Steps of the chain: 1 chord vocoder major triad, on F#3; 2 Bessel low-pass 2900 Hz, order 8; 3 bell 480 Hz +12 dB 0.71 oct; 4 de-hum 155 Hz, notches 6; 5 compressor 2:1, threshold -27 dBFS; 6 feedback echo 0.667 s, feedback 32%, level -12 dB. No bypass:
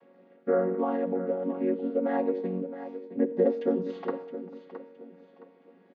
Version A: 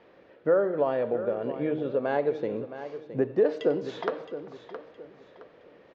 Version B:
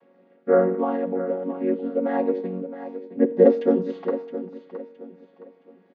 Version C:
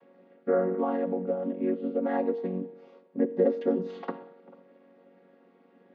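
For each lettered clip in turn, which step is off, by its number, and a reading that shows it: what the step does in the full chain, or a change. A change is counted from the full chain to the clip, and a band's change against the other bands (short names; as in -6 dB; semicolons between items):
1, 250 Hz band -5.5 dB; 5, mean gain reduction 3.5 dB; 6, momentary loudness spread change -2 LU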